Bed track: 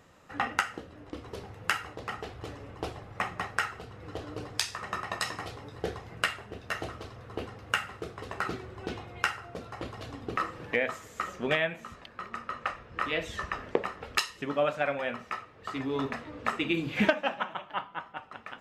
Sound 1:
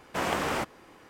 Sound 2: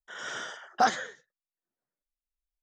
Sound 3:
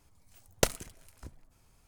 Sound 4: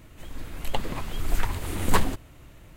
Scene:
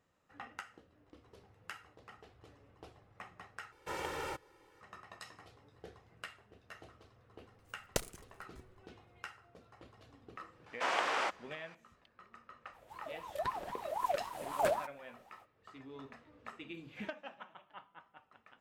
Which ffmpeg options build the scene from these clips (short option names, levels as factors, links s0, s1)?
-filter_complex "[1:a]asplit=2[s0][s1];[0:a]volume=0.119[s2];[s0]aecho=1:1:2.2:0.91[s3];[3:a]agate=range=0.0224:threshold=0.002:ratio=3:release=100:detection=peak[s4];[s1]highpass=630,lowpass=5600[s5];[4:a]aeval=exprs='val(0)*sin(2*PI*800*n/s+800*0.3/3.8*sin(2*PI*3.8*n/s))':c=same[s6];[s2]asplit=2[s7][s8];[s7]atrim=end=3.724[s9];[s3]atrim=end=1.09,asetpts=PTS-STARTPTS,volume=0.211[s10];[s8]atrim=start=4.806[s11];[s4]atrim=end=1.87,asetpts=PTS-STARTPTS,volume=0.355,afade=t=in:d=0.004:c=hsin,afade=t=out:st=1.866:d=0.004:c=hsin,adelay=7330[s12];[s5]atrim=end=1.09,asetpts=PTS-STARTPTS,volume=0.794,afade=t=in:d=0.004:c=hsin,afade=t=out:st=1.086:d=0.004:c=hsin,adelay=470106S[s13];[s6]atrim=end=2.76,asetpts=PTS-STARTPTS,volume=0.266,afade=t=in:d=0.05,afade=t=out:st=2.71:d=0.05,adelay=12710[s14];[s9][s10]acrossfade=d=0.004:c1=hsin:c2=hsin[s15];[s15][s11]acrossfade=d=0.004:c1=hsin:c2=hsin[s16];[s16][s12][s13][s14]amix=inputs=4:normalize=0"